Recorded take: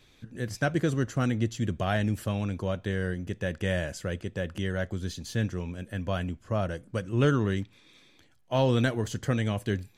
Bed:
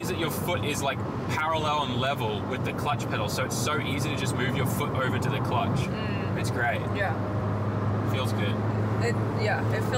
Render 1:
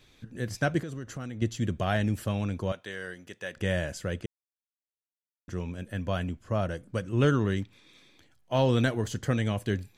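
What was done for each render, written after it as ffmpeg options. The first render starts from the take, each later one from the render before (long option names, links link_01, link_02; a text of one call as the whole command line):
ffmpeg -i in.wav -filter_complex "[0:a]asettb=1/sr,asplit=3[link_01][link_02][link_03];[link_01]atrim=end=0.804[link_04];[link_02]atrim=start=0.8:end=1.42,asetpts=PTS-STARTPTS,afade=type=in:duration=0.004:curve=qsin,afade=type=out:start_time=0.616:duration=0.004:curve=qsin,acompressor=threshold=-35dB:ratio=5:attack=3.2:release=140:knee=1:detection=peak[link_05];[link_03]atrim=start=1.416[link_06];[link_04][link_05]acrossfade=duration=0.004:curve1=hsin:curve2=qsin[link_07];[link_07][link_06]acrossfade=duration=0.004:curve1=qsin:curve2=hsin,asettb=1/sr,asplit=3[link_08][link_09][link_10];[link_08]atrim=end=2.724[link_11];[link_09]atrim=start=2.72:end=3.57,asetpts=PTS-STARTPTS,afade=type=in:duration=0.004:curve=qsin,afade=type=out:start_time=0.846:duration=0.004:curve=qsin,highpass=frequency=1000:poles=1[link_12];[link_10]atrim=start=3.566[link_13];[link_11][link_12]acrossfade=duration=0.004:curve1=hsin:curve2=qsin[link_14];[link_14][link_13]acrossfade=duration=0.004:curve1=qsin:curve2=hsin,asplit=3[link_15][link_16][link_17];[link_15]atrim=end=4.26,asetpts=PTS-STARTPTS,afade=type=out:start_time=4.256:duration=0.004:curve=hsin[link_18];[link_16]atrim=start=4.26:end=5.48,asetpts=PTS-STARTPTS,volume=0[link_19];[link_17]atrim=start=5.48,asetpts=PTS-STARTPTS,afade=type=in:duration=0.004:curve=hsin[link_20];[link_18][link_19][link_20]concat=n=3:v=0:a=1" out.wav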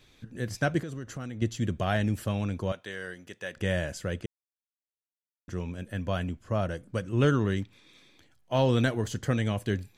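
ffmpeg -i in.wav -af anull out.wav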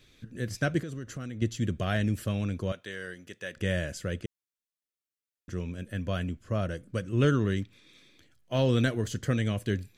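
ffmpeg -i in.wav -af "equalizer=frequency=860:width=2.4:gain=-9.5" out.wav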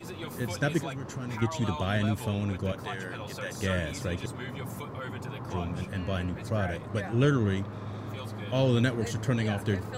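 ffmpeg -i in.wav -i bed.wav -filter_complex "[1:a]volume=-11dB[link_01];[0:a][link_01]amix=inputs=2:normalize=0" out.wav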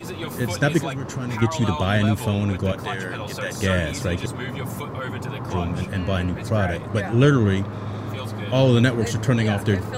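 ffmpeg -i in.wav -af "volume=8dB" out.wav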